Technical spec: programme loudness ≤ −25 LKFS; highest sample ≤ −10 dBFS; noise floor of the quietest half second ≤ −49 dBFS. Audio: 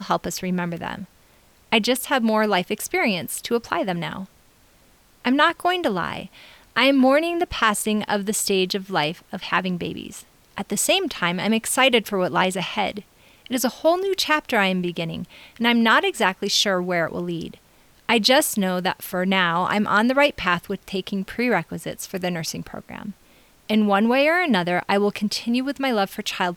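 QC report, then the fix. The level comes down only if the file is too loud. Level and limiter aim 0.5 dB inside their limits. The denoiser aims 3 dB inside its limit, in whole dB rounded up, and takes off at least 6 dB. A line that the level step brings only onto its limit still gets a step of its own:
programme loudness −21.5 LKFS: out of spec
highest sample −5.0 dBFS: out of spec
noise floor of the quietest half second −56 dBFS: in spec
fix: level −4 dB
brickwall limiter −10.5 dBFS

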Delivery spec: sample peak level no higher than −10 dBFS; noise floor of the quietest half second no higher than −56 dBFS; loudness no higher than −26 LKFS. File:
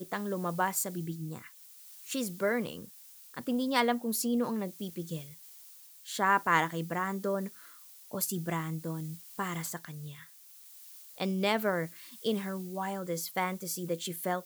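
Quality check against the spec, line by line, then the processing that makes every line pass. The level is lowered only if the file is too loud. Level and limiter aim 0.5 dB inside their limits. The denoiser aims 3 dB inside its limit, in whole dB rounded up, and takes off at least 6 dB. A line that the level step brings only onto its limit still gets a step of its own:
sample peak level −11.0 dBFS: in spec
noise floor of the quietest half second −54 dBFS: out of spec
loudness −33.0 LKFS: in spec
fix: broadband denoise 6 dB, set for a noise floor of −54 dBFS

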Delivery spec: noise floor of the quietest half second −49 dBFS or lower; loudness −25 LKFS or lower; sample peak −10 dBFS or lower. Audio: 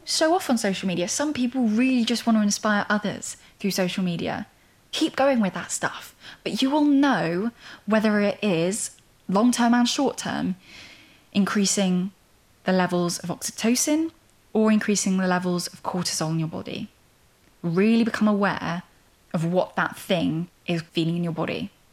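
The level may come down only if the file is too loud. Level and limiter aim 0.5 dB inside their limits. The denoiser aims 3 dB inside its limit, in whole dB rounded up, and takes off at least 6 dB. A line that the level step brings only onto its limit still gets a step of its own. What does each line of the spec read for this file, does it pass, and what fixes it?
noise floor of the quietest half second −59 dBFS: in spec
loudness −23.5 LKFS: out of spec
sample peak −8.5 dBFS: out of spec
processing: level −2 dB

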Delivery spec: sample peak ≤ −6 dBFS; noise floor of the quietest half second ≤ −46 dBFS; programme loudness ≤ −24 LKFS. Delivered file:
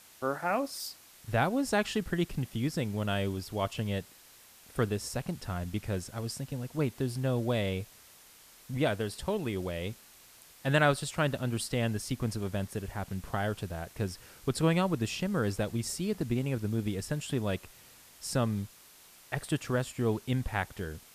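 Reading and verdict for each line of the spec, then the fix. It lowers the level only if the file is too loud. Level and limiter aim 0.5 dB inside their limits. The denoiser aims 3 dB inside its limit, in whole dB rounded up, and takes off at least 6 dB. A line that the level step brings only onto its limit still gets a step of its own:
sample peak −11.5 dBFS: in spec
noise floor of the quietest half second −56 dBFS: in spec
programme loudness −32.5 LKFS: in spec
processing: no processing needed

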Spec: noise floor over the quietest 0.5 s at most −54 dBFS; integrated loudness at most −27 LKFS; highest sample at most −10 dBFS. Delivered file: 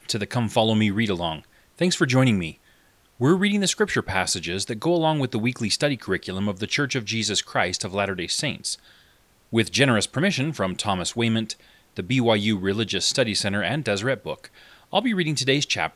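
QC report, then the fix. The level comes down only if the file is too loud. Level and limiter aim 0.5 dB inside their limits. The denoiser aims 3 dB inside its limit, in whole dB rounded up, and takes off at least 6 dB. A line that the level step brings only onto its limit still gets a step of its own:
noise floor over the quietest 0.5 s −59 dBFS: in spec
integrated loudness −23.0 LKFS: out of spec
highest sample −4.5 dBFS: out of spec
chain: level −4.5 dB
brickwall limiter −10.5 dBFS

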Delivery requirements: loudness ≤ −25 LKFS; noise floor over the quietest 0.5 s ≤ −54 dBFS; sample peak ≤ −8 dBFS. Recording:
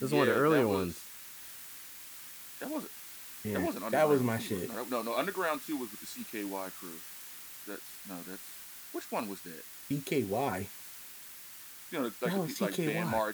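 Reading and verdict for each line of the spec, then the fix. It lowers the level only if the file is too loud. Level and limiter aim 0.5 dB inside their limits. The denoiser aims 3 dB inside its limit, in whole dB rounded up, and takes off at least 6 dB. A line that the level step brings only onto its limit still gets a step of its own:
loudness −34.5 LKFS: in spec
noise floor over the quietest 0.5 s −49 dBFS: out of spec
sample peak −13.0 dBFS: in spec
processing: broadband denoise 8 dB, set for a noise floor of −49 dBFS

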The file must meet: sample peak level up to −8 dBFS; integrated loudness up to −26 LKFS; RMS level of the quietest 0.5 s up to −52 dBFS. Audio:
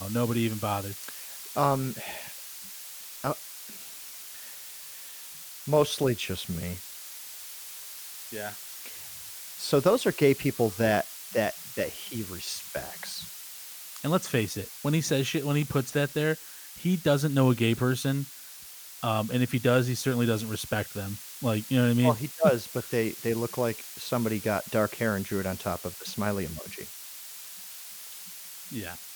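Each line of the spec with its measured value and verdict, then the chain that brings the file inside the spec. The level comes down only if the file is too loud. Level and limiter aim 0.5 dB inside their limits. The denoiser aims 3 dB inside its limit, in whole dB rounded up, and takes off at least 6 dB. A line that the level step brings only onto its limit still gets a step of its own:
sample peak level −8.5 dBFS: in spec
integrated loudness −29.0 LKFS: in spec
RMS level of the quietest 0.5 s −45 dBFS: out of spec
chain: broadband denoise 10 dB, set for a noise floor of −45 dBFS

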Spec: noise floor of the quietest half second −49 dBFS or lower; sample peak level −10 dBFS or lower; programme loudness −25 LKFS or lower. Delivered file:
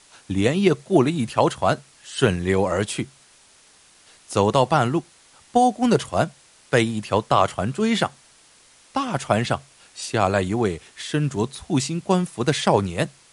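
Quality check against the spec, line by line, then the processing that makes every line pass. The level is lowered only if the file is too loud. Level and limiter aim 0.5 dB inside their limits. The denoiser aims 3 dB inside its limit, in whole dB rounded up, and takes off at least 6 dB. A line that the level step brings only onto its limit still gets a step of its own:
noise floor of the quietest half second −54 dBFS: in spec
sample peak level −4.0 dBFS: out of spec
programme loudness −22.0 LKFS: out of spec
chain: level −3.5 dB
brickwall limiter −10.5 dBFS

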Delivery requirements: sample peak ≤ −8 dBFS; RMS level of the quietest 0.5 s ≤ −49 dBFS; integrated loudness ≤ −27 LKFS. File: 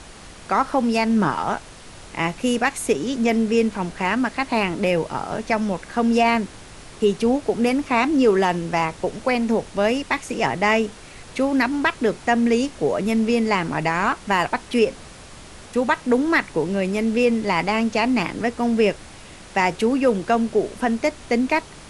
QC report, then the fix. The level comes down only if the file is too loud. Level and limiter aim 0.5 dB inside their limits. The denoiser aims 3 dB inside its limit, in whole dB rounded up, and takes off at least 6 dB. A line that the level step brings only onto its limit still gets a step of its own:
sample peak −5.0 dBFS: out of spec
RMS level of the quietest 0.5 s −41 dBFS: out of spec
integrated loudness −21.5 LKFS: out of spec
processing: broadband denoise 6 dB, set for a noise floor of −41 dBFS
level −6 dB

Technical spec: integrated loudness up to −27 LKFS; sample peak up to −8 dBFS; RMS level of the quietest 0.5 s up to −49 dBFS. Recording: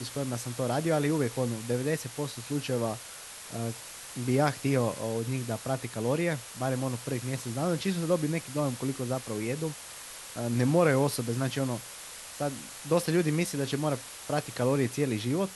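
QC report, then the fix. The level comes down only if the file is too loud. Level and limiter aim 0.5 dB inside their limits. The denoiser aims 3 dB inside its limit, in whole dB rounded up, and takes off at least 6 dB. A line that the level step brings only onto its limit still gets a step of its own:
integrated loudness −30.5 LKFS: in spec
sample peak −12.0 dBFS: in spec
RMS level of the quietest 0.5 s −45 dBFS: out of spec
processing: broadband denoise 7 dB, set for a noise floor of −45 dBFS

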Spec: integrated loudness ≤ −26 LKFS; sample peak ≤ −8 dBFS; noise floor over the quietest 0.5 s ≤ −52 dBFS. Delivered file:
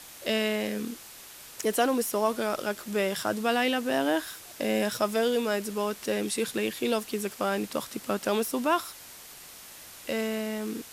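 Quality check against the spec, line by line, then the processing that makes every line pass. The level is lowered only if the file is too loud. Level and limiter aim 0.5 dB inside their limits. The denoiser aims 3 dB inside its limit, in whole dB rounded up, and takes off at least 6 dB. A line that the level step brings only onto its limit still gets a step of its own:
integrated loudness −29.0 LKFS: in spec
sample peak −13.0 dBFS: in spec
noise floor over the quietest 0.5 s −47 dBFS: out of spec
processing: broadband denoise 8 dB, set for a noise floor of −47 dBFS

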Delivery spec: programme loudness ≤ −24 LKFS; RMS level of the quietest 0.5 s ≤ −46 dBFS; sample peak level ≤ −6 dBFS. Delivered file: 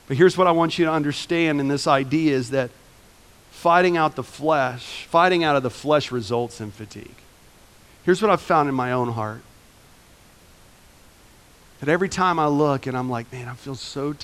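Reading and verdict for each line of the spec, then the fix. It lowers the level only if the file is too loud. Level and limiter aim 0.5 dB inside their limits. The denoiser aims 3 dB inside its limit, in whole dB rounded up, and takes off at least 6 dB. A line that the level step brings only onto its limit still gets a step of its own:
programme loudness −21.0 LKFS: out of spec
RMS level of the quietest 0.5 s −51 dBFS: in spec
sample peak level −3.5 dBFS: out of spec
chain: level −3.5 dB

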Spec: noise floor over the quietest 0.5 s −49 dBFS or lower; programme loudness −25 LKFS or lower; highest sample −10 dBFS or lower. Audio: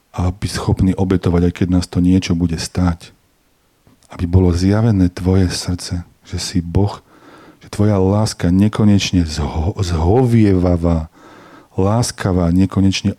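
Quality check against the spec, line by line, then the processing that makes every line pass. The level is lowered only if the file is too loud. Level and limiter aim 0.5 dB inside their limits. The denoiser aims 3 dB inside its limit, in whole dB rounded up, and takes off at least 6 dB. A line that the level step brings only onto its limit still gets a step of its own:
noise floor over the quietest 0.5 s −58 dBFS: in spec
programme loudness −16.0 LKFS: out of spec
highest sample −2.5 dBFS: out of spec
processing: level −9.5 dB

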